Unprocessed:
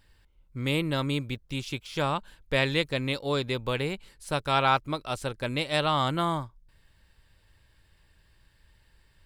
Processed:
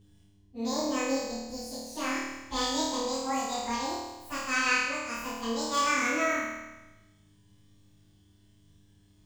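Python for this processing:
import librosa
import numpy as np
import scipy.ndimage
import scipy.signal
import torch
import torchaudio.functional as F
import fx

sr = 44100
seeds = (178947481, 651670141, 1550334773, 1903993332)

y = fx.pitch_bins(x, sr, semitones=11.0)
y = fx.dmg_buzz(y, sr, base_hz=100.0, harmonics=4, level_db=-55.0, tilt_db=-8, odd_only=False)
y = fx.room_flutter(y, sr, wall_m=4.5, rt60_s=1.1)
y = F.gain(torch.from_numpy(y), -4.5).numpy()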